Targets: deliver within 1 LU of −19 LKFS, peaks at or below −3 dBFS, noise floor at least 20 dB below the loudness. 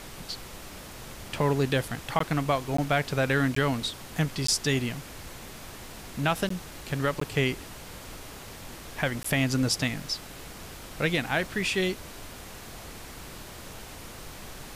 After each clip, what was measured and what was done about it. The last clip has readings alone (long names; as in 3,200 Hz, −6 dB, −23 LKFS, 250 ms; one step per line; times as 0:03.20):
number of dropouts 7; longest dropout 14 ms; background noise floor −44 dBFS; target noise floor −48 dBFS; integrated loudness −28.0 LKFS; sample peak −13.0 dBFS; target loudness −19.0 LKFS
→ repair the gap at 0:02.19/0:02.77/0:03.55/0:04.47/0:06.49/0:07.20/0:09.23, 14 ms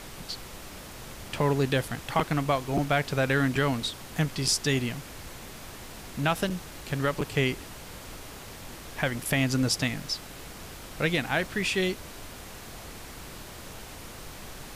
number of dropouts 0; background noise floor −44 dBFS; target noise floor −48 dBFS
→ noise reduction from a noise print 6 dB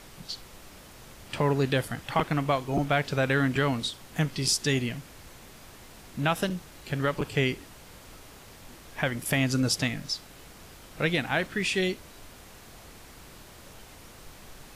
background noise floor −50 dBFS; integrated loudness −28.0 LKFS; sample peak −11.0 dBFS; target loudness −19.0 LKFS
→ level +9 dB
brickwall limiter −3 dBFS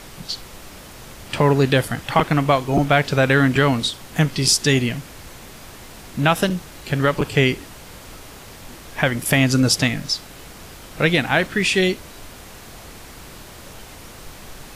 integrated loudness −19.0 LKFS; sample peak −3.0 dBFS; background noise floor −41 dBFS